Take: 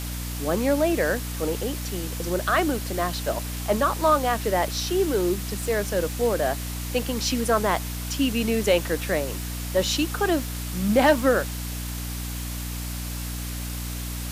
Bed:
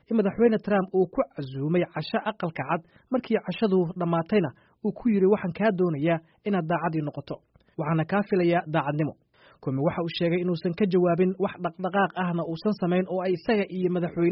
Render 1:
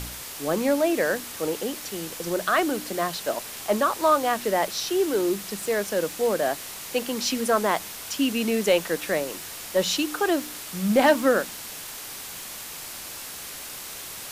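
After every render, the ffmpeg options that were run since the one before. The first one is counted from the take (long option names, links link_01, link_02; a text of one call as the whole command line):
ffmpeg -i in.wav -af "bandreject=frequency=60:width_type=h:width=4,bandreject=frequency=120:width_type=h:width=4,bandreject=frequency=180:width_type=h:width=4,bandreject=frequency=240:width_type=h:width=4,bandreject=frequency=300:width_type=h:width=4" out.wav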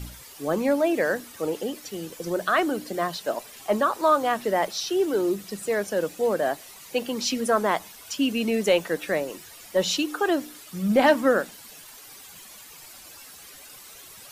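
ffmpeg -i in.wav -af "afftdn=noise_reduction=12:noise_floor=-38" out.wav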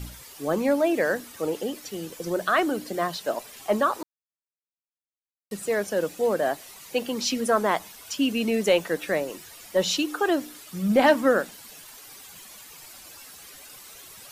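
ffmpeg -i in.wav -filter_complex "[0:a]asplit=3[link_01][link_02][link_03];[link_01]atrim=end=4.03,asetpts=PTS-STARTPTS,afade=type=out:start_time=4.026:duration=0.004:curve=hsin[link_04];[link_02]atrim=start=4.03:end=5.51,asetpts=PTS-STARTPTS,volume=0[link_05];[link_03]atrim=start=5.51,asetpts=PTS-STARTPTS,afade=type=in:duration=0.004:curve=hsin[link_06];[link_04][link_05][link_06]concat=n=3:v=0:a=1" out.wav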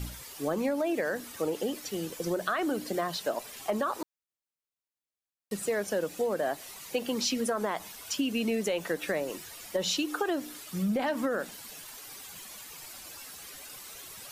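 ffmpeg -i in.wav -af "alimiter=limit=-15.5dB:level=0:latency=1:release=52,acompressor=threshold=-26dB:ratio=6" out.wav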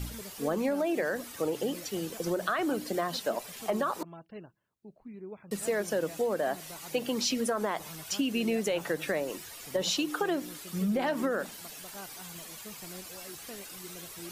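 ffmpeg -i in.wav -i bed.wav -filter_complex "[1:a]volume=-23dB[link_01];[0:a][link_01]amix=inputs=2:normalize=0" out.wav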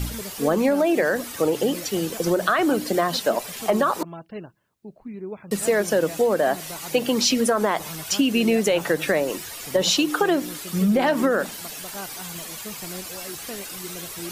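ffmpeg -i in.wav -af "volume=9.5dB" out.wav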